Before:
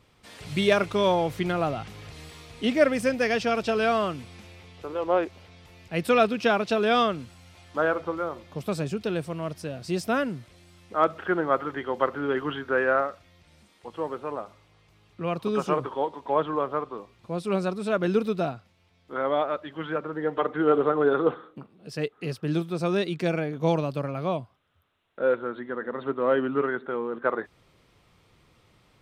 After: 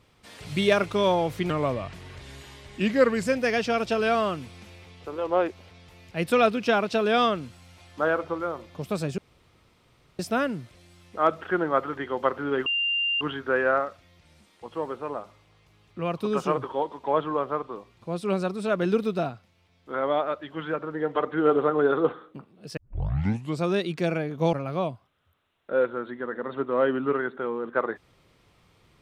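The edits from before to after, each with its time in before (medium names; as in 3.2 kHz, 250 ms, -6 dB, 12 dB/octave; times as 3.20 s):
1.50–3.04 s: speed 87%
8.95–9.96 s: room tone
12.43 s: add tone 2.79 kHz -22.5 dBFS 0.55 s
21.99 s: tape start 0.85 s
23.75–24.02 s: delete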